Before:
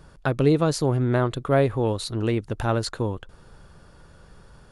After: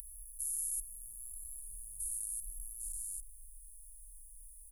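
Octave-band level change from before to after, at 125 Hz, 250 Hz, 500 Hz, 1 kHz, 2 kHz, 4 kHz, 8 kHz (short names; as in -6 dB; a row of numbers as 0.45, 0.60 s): under -35 dB, under -40 dB, under -40 dB, under -40 dB, under -40 dB, under -35 dB, +3.5 dB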